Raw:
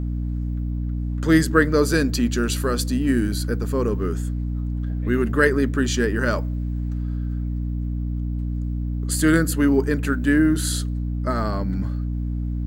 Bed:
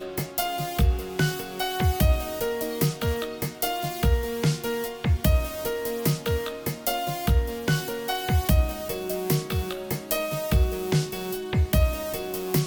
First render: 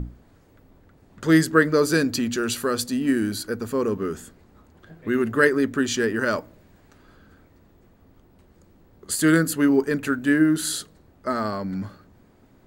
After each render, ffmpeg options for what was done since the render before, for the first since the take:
-af "bandreject=f=60:t=h:w=6,bandreject=f=120:t=h:w=6,bandreject=f=180:t=h:w=6,bandreject=f=240:t=h:w=6,bandreject=f=300:t=h:w=6"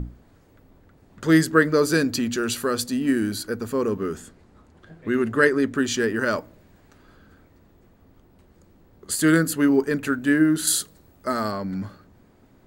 -filter_complex "[0:a]asettb=1/sr,asplit=3[a][b][c];[a]atrim=end=4.184[d];[b]atrim=start=4.18:end=5.75,asetpts=PTS-STARTPTS,afade=t=in:d=0.004:c=qsin,afade=t=out:st=1.566:d=0.004:c=qsin,lowpass=11k[e];[c]atrim=start=5.746[f];[d][e]acrossfade=d=0.004:c1=hsin:c2=qsin[g];[g][f]acrossfade=d=0.004:c1=qsin:c2=hsin,asettb=1/sr,asplit=3[h][i][j];[h]atrim=end=10.674[k];[i]atrim=start=10.67:end=11.52,asetpts=PTS-STARTPTS,afade=t=in:d=0.004:c=qsin,afade=t=out:st=0.846:d=0.004:c=qsin,highshelf=f=6.3k:g=11.5[l];[j]atrim=start=11.516[m];[k][l]acrossfade=d=0.004:c1=hsin:c2=qsin[n];[n][m]acrossfade=d=0.004:c1=qsin:c2=hsin"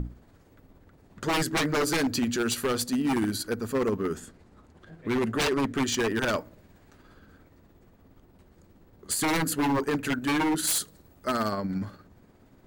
-af "tremolo=f=17:d=0.36,aeval=exprs='0.1*(abs(mod(val(0)/0.1+3,4)-2)-1)':c=same"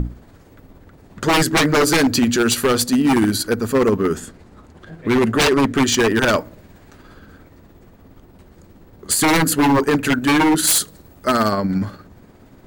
-af "volume=10.5dB"

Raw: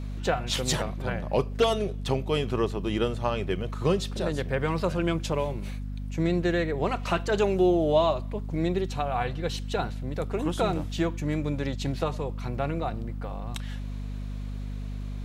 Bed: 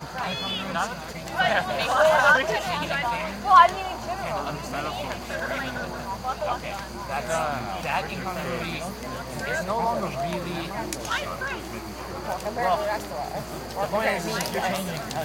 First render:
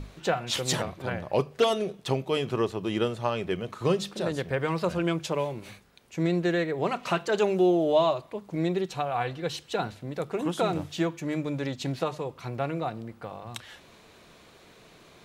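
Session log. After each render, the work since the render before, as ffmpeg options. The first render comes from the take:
-af "bandreject=f=50:t=h:w=6,bandreject=f=100:t=h:w=6,bandreject=f=150:t=h:w=6,bandreject=f=200:t=h:w=6,bandreject=f=250:t=h:w=6"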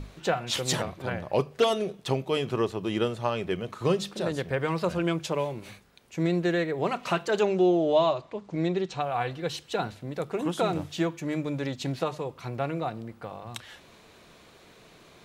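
-filter_complex "[0:a]asettb=1/sr,asplit=3[a][b][c];[a]atrim=end=7.404[d];[b]atrim=start=7.4:end=9.01,asetpts=PTS-STARTPTS,afade=t=in:d=0.004:c=qsin,afade=t=out:st=1.606:d=0.004:c=qsin,lowpass=f=7.4k:w=0.5412,lowpass=f=7.4k:w=1.3066[e];[c]atrim=start=9.006[f];[d][e]acrossfade=d=0.004:c1=hsin:c2=qsin[g];[g][f]acrossfade=d=0.004:c1=qsin:c2=hsin"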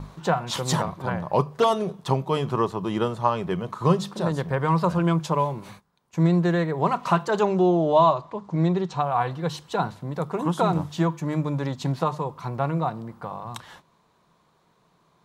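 -af "agate=range=-14dB:threshold=-49dB:ratio=16:detection=peak,equalizer=f=160:t=o:w=0.67:g=10,equalizer=f=1k:t=o:w=0.67:g=12,equalizer=f=2.5k:t=o:w=0.67:g=-5"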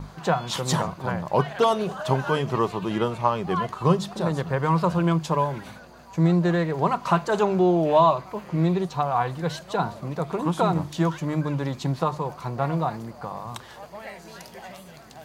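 -filter_complex "[1:a]volume=-15dB[a];[0:a][a]amix=inputs=2:normalize=0"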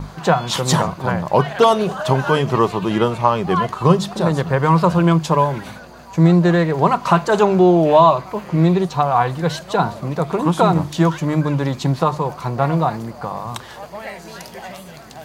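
-af "volume=7.5dB,alimiter=limit=-2dB:level=0:latency=1"

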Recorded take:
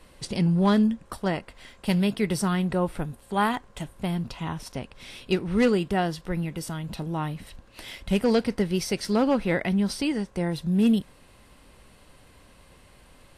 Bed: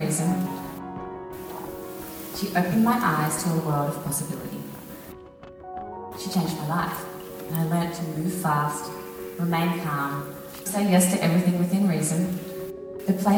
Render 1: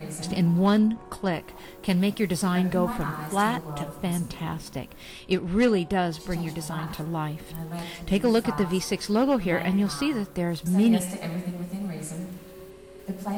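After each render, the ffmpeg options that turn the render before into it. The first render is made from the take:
-filter_complex "[1:a]volume=-10.5dB[a];[0:a][a]amix=inputs=2:normalize=0"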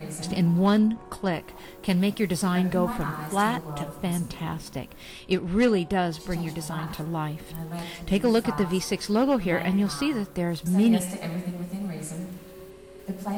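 -af anull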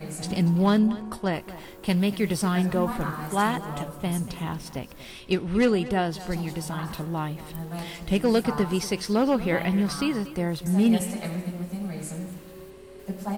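-af "aecho=1:1:236:0.15"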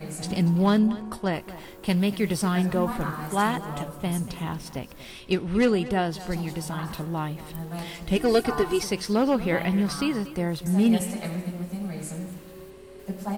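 -filter_complex "[0:a]asettb=1/sr,asplit=3[a][b][c];[a]atrim=end=8.164[d];[b]atrim=start=8.16:end=8.83,asetpts=PTS-STARTPTS,afade=t=in:d=0.004:c=qsin,afade=t=out:st=0.666:d=0.004:c=qsin,aecho=1:1:2.7:0.81,atrim=end_sample=29547[e];[c]atrim=start=8.826[f];[d][e]acrossfade=d=0.004:c1=hsin:c2=qsin[g];[g][f]acrossfade=d=0.004:c1=qsin:c2=hsin"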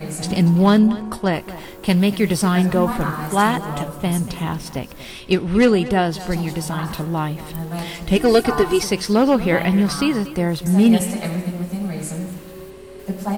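-af "volume=7dB,alimiter=limit=-3dB:level=0:latency=1"

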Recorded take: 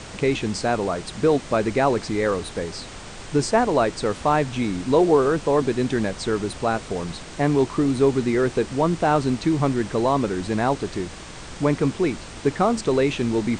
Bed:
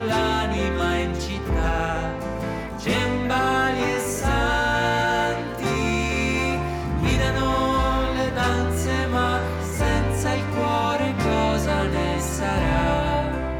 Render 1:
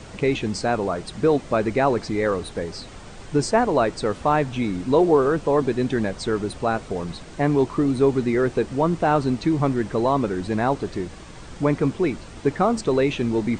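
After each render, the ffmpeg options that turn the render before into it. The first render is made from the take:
-af "afftdn=nr=7:nf=-38"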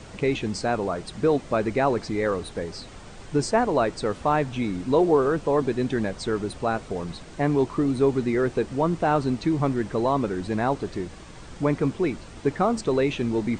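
-af "volume=-2.5dB"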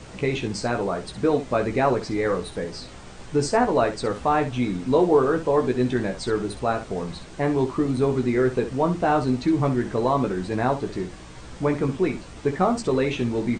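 -af "aecho=1:1:16|65:0.531|0.282"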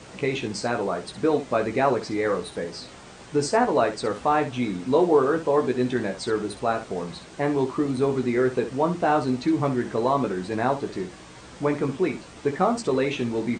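-af "highpass=f=180:p=1"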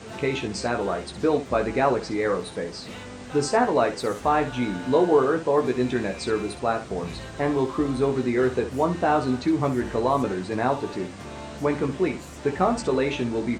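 -filter_complex "[1:a]volume=-17.5dB[a];[0:a][a]amix=inputs=2:normalize=0"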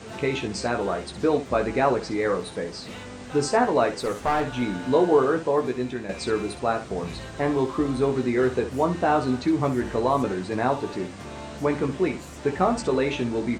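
-filter_complex "[0:a]asettb=1/sr,asplit=3[a][b][c];[a]atrim=end=4.004[d];[b]atrim=start=4:end=4.62,asetpts=PTS-STARTPTS,afade=t=in:d=0.004:c=qsin,afade=t=out:st=0.616:d=0.004:c=qsin,aeval=exprs='clip(val(0),-1,0.0891)':c=same[e];[c]atrim=start=4.616[f];[d][e]acrossfade=d=0.004:c1=hsin:c2=qsin[g];[g][f]acrossfade=d=0.004:c1=qsin:c2=hsin,asplit=2[h][i];[h]atrim=end=6.09,asetpts=PTS-STARTPTS,afade=t=out:st=5.38:d=0.71:silence=0.375837[j];[i]atrim=start=6.09,asetpts=PTS-STARTPTS,afade=t=in:d=0.004:c=hsin:silence=0.375837[k];[j][k]concat=n=2:v=0:a=1"

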